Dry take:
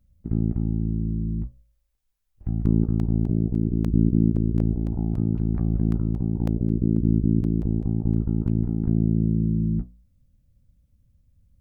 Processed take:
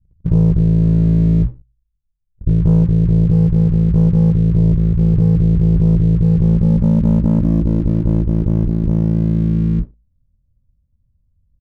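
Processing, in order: low shelf 240 Hz +12 dB; vocal rider within 4 dB 0.5 s; doubler 24 ms -10.5 dB; low-pass sweep 160 Hz -> 950 Hz, 6.29–10.12; sample leveller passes 2; Butterworth band-stop 720 Hz, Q 5.7; gain -8 dB

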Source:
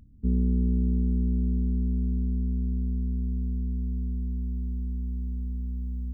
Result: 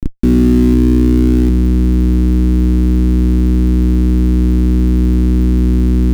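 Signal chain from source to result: Schmitt trigger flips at -44.5 dBFS; resonant low shelf 430 Hz +13 dB, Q 3; gain +2.5 dB

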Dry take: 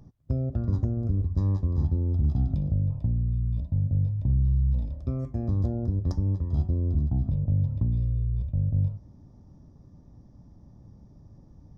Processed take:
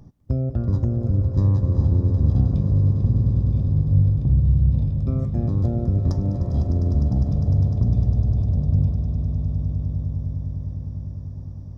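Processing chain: swelling echo 0.101 s, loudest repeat 8, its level -13 dB; gain +4.5 dB

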